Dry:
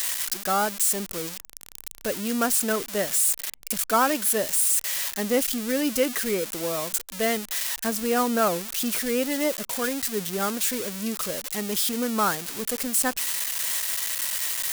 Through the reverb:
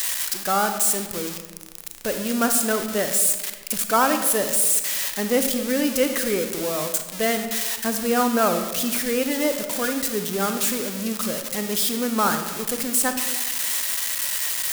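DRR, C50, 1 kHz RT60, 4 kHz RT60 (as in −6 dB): 6.5 dB, 7.5 dB, 1.2 s, 0.75 s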